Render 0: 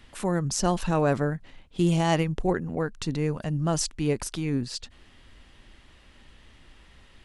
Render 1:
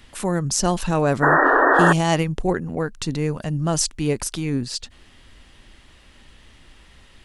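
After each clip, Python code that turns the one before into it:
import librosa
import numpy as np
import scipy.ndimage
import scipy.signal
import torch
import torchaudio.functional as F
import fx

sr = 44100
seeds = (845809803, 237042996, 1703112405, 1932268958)

y = fx.high_shelf(x, sr, hz=5100.0, db=5.5)
y = fx.spec_paint(y, sr, seeds[0], shape='noise', start_s=1.22, length_s=0.71, low_hz=260.0, high_hz=1900.0, level_db=-19.0)
y = y * librosa.db_to_amplitude(3.5)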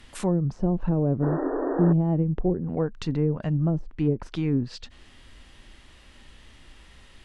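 y = fx.env_lowpass_down(x, sr, base_hz=360.0, full_db=-16.5)
y = fx.hpss(y, sr, part='percussive', gain_db=-4)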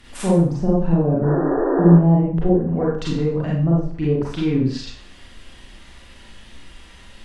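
y = fx.rev_schroeder(x, sr, rt60_s=0.49, comb_ms=32, drr_db=-5.5)
y = y * librosa.db_to_amplitude(1.0)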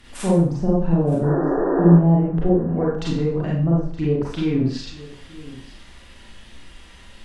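y = x + 10.0 ** (-19.0 / 20.0) * np.pad(x, (int(921 * sr / 1000.0), 0))[:len(x)]
y = y * librosa.db_to_amplitude(-1.0)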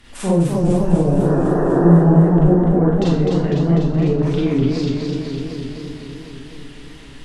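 y = fx.echo_warbled(x, sr, ms=250, feedback_pct=73, rate_hz=2.8, cents=131, wet_db=-4.0)
y = y * librosa.db_to_amplitude(1.0)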